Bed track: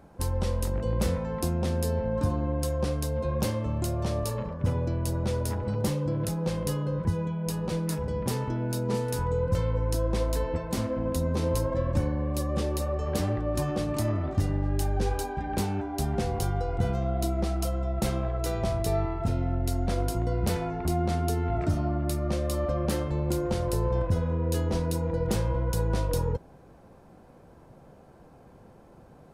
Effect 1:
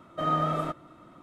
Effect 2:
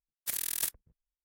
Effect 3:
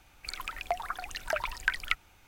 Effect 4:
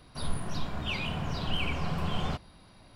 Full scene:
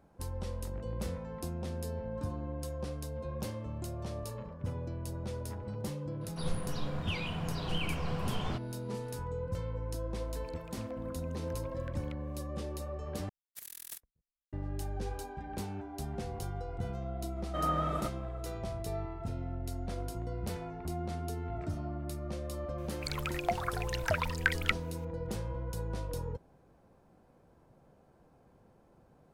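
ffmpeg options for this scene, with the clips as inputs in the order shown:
ffmpeg -i bed.wav -i cue0.wav -i cue1.wav -i cue2.wav -i cue3.wav -filter_complex "[3:a]asplit=2[link_01][link_02];[0:a]volume=-10.5dB[link_03];[link_01]acompressor=threshold=-50dB:ratio=3:attack=43:release=207:knee=1:detection=peak[link_04];[2:a]equalizer=frequency=12000:width=7:gain=2.5[link_05];[link_03]asplit=2[link_06][link_07];[link_06]atrim=end=13.294[link_08];[link_05]atrim=end=1.24,asetpts=PTS-STARTPTS,volume=-14dB[link_09];[link_07]atrim=start=14.526[link_10];[4:a]atrim=end=2.95,asetpts=PTS-STARTPTS,volume=-4.5dB,afade=type=in:duration=0.004:curve=hsin,afade=type=out:start_time=2.946:duration=0.004:curve=hsin,adelay=6210[link_11];[link_04]atrim=end=2.27,asetpts=PTS-STARTPTS,volume=-14.5dB,afade=type=in:duration=0.004:curve=hsin,afade=type=out:start_time=2.266:duration=0.004:curve=hsin,adelay=10200[link_12];[1:a]atrim=end=1.22,asetpts=PTS-STARTPTS,volume=-5.5dB,afade=type=in:duration=0.004:curve=hsin,afade=type=out:start_time=1.216:duration=0.004:curve=hsin,adelay=17360[link_13];[link_02]atrim=end=2.27,asetpts=PTS-STARTPTS,volume=-0.5dB,afade=type=in:duration=0.004:curve=hsin,afade=type=out:start_time=2.266:duration=0.004:curve=hsin,adelay=22780[link_14];[link_08][link_09]acrossfade=duration=0.004:curve1=hsin:curve2=hsin[link_15];[link_15][link_10]acrossfade=duration=0.004:curve1=hsin:curve2=hsin[link_16];[link_16][link_11][link_12][link_13][link_14]amix=inputs=5:normalize=0" out.wav

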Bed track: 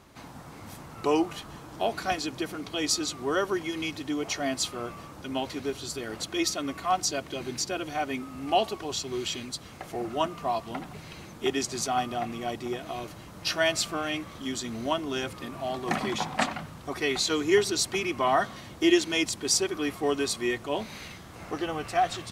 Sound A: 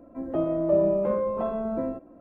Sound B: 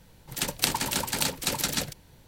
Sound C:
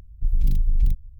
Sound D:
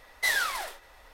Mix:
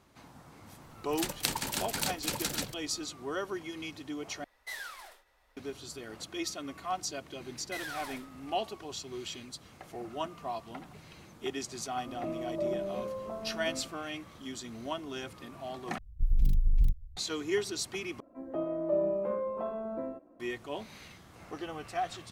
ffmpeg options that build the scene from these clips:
ffmpeg -i bed.wav -i cue0.wav -i cue1.wav -i cue2.wav -i cue3.wav -filter_complex "[4:a]asplit=2[link_01][link_02];[1:a]asplit=2[link_03][link_04];[0:a]volume=-8.5dB[link_05];[link_02]acompressor=threshold=-27dB:ratio=6:attack=3.2:release=140:knee=1:detection=peak[link_06];[link_04]lowshelf=frequency=190:gain=-11[link_07];[link_05]asplit=4[link_08][link_09][link_10][link_11];[link_08]atrim=end=4.444[link_12];[link_01]atrim=end=1.13,asetpts=PTS-STARTPTS,volume=-15dB[link_13];[link_09]atrim=start=5.566:end=15.984[link_14];[3:a]atrim=end=1.19,asetpts=PTS-STARTPTS,volume=-5.5dB[link_15];[link_10]atrim=start=17.166:end=18.204[link_16];[link_07]atrim=end=2.2,asetpts=PTS-STARTPTS,volume=-6dB[link_17];[link_11]atrim=start=20.396[link_18];[2:a]atrim=end=2.27,asetpts=PTS-STARTPTS,volume=-6dB,afade=type=in:duration=0.004:curve=hsin,afade=type=out:start_time=2.266:duration=0.004:curve=hsin,adelay=810[link_19];[link_06]atrim=end=1.13,asetpts=PTS-STARTPTS,volume=-9.5dB,afade=type=in:duration=0.004:curve=hsin,afade=type=out:start_time=1.126:duration=0.004:curve=hsin,adelay=7490[link_20];[link_03]atrim=end=2.2,asetpts=PTS-STARTPTS,volume=-11.5dB,afade=type=in:duration=0.004:curve=hsin,afade=type=out:start_time=2.196:duration=0.004:curve=hsin,adelay=11890[link_21];[link_12][link_13]acrossfade=duration=0.004:curve1=hsin:curve2=hsin[link_22];[link_22][link_14]acrossfade=duration=0.004:curve1=hsin:curve2=hsin[link_23];[link_23][link_15]acrossfade=duration=0.004:curve1=hsin:curve2=hsin[link_24];[link_24][link_16]acrossfade=duration=0.004:curve1=hsin:curve2=hsin[link_25];[link_25][link_17]acrossfade=duration=0.004:curve1=hsin:curve2=hsin[link_26];[link_26][link_18]acrossfade=duration=0.004:curve1=hsin:curve2=hsin[link_27];[link_27][link_19][link_20][link_21]amix=inputs=4:normalize=0" out.wav

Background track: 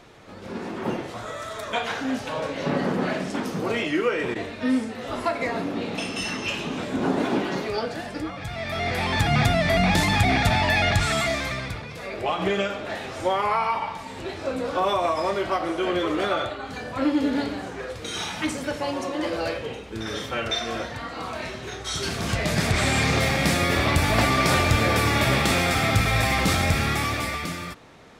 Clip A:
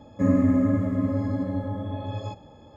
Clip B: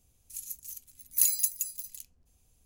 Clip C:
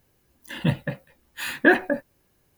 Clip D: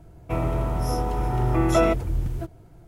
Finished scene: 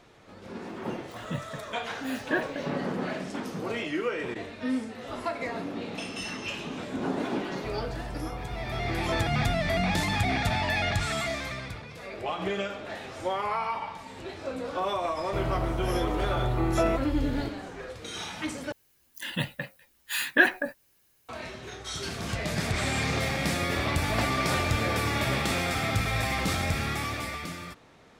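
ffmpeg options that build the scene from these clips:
ffmpeg -i bed.wav -i cue0.wav -i cue1.wav -i cue2.wav -i cue3.wav -filter_complex "[3:a]asplit=2[link_01][link_02];[4:a]asplit=2[link_03][link_04];[0:a]volume=-6.5dB[link_05];[link_02]tiltshelf=frequency=1200:gain=-7[link_06];[link_05]asplit=2[link_07][link_08];[link_07]atrim=end=18.724[link_09];[link_06]atrim=end=2.57,asetpts=PTS-STARTPTS,volume=-3dB[link_10];[link_08]atrim=start=21.286[link_11];[link_01]atrim=end=2.57,asetpts=PTS-STARTPTS,volume=-11.5dB,afade=type=in:duration=0.004:curve=hsin,afade=type=out:start_time=2.566:duration=0.004:curve=hsin,adelay=660[link_12];[link_03]atrim=end=2.87,asetpts=PTS-STARTPTS,volume=-12.5dB,afade=type=in:duration=0.004:curve=hsin,afade=type=out:start_time=2.866:duration=0.004:curve=hsin,adelay=7340[link_13];[link_04]atrim=end=2.87,asetpts=PTS-STARTPTS,volume=-5.5dB,afade=type=in:duration=0.004:curve=hsin,afade=type=out:start_time=2.866:duration=0.004:curve=hsin,adelay=15030[link_14];[link_09][link_10]acrossfade=duration=0.004:curve1=hsin:curve2=hsin[link_15];[link_15][link_11]acrossfade=duration=0.004:curve1=hsin:curve2=hsin[link_16];[link_16][link_12][link_13][link_14]amix=inputs=4:normalize=0" out.wav

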